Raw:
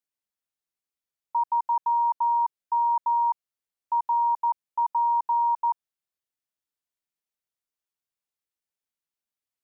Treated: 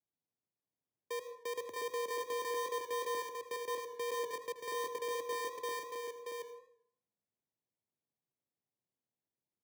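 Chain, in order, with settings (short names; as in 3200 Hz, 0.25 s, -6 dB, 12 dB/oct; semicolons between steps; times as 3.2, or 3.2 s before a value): slices in reverse order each 0.121 s, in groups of 3; LPF 1100 Hz 6 dB/oct; bell 660 Hz -15 dB 1.8 oct; limiter -39 dBFS, peak gain reduction 6.5 dB; sample-and-hold 33×; frequency shift +82 Hz; on a send: echo 0.629 s -4.5 dB; on the sum: plate-style reverb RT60 0.61 s, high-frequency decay 0.35×, pre-delay 95 ms, DRR 11 dB; warbling echo 81 ms, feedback 38%, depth 85 cents, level -15 dB; gain +4.5 dB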